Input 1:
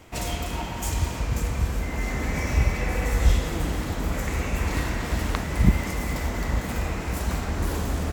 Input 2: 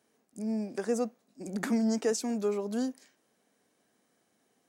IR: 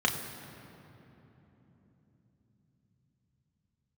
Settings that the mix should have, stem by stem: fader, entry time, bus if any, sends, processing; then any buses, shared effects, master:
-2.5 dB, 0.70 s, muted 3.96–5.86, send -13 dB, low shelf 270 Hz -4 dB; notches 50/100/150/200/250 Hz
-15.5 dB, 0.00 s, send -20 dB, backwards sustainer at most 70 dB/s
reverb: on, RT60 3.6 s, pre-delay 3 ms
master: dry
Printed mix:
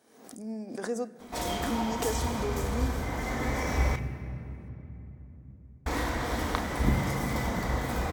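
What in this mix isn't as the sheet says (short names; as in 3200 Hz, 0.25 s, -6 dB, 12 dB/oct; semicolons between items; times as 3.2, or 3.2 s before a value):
stem 1: entry 0.70 s -> 1.20 s; stem 2 -15.5 dB -> -5.0 dB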